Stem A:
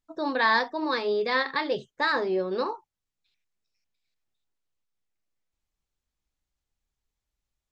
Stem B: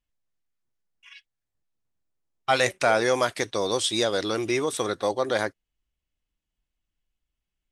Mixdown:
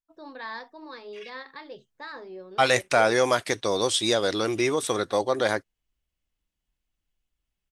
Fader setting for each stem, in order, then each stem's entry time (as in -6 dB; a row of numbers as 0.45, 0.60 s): -14.5, +1.0 dB; 0.00, 0.10 s